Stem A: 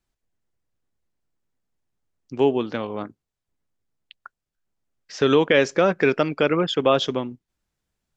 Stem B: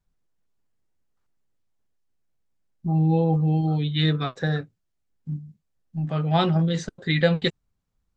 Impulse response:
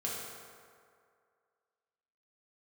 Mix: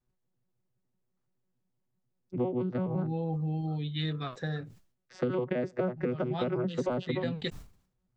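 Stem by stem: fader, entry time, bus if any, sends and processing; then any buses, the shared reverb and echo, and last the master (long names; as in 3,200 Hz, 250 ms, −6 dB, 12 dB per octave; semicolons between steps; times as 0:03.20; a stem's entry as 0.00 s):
+0.5 dB, 0.00 s, no send, vocoder with an arpeggio as carrier bare fifth, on B2, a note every 84 ms; high-shelf EQ 2,600 Hz −9 dB
−9.0 dB, 0.00 s, no send, notch filter 1,500 Hz, Q 24; level that may fall only so fast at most 120 dB per second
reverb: not used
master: downward compressor 10 to 1, threshold −27 dBFS, peak gain reduction 15.5 dB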